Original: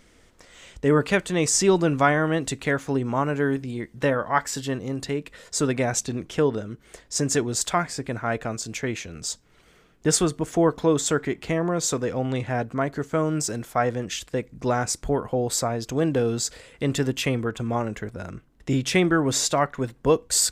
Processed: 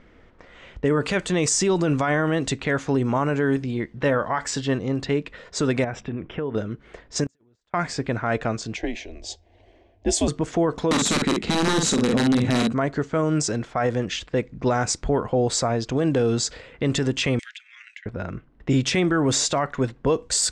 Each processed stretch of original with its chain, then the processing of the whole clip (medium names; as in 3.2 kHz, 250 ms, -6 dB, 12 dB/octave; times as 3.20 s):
5.84–6.55 s: Savitzky-Golay filter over 25 samples + compression 4:1, threshold -30 dBFS
7.24–7.74 s: compressor with a negative ratio -27 dBFS, ratio -0.5 + inverted gate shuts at -24 dBFS, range -39 dB
8.76–10.28 s: peaking EQ 790 Hz +13 dB 0.28 oct + static phaser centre 580 Hz, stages 4 + frequency shift -100 Hz
10.91–12.73 s: integer overflow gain 17.5 dB + doubling 49 ms -5 dB + small resonant body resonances 220/3900 Hz, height 14 dB, ringing for 35 ms
17.39–18.06 s: steep high-pass 1.9 kHz 48 dB/octave + three bands compressed up and down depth 100%
whole clip: low-pass 9 kHz 24 dB/octave; level-controlled noise filter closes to 2.1 kHz, open at -17.5 dBFS; peak limiter -17 dBFS; trim +4.5 dB